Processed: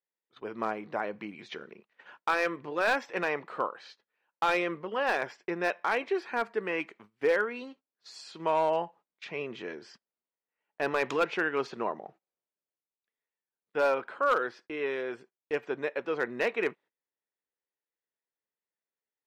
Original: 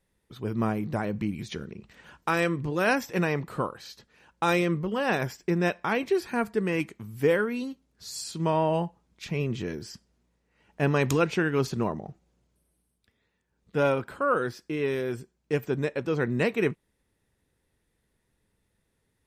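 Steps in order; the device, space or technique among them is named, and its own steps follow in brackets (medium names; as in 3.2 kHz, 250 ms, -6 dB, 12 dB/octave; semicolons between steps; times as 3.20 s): walkie-talkie (band-pass 510–2900 Hz; hard clipper -19.5 dBFS, distortion -17 dB; gate -54 dBFS, range -19 dB); trim +1 dB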